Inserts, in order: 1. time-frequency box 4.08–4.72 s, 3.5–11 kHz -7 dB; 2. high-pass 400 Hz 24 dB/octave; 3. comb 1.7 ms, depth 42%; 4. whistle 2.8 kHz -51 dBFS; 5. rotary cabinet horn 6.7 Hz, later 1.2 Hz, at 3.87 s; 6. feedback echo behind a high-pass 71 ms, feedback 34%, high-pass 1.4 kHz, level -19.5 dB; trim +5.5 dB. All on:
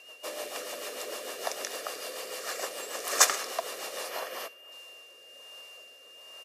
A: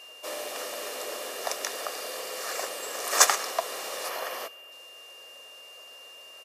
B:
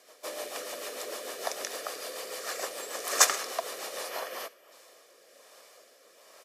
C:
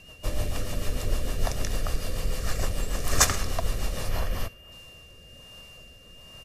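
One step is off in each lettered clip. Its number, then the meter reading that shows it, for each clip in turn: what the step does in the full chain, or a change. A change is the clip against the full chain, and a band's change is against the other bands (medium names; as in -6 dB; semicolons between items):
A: 5, loudness change +2.5 LU; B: 4, momentary loudness spread change -9 LU; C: 2, 250 Hz band +13.0 dB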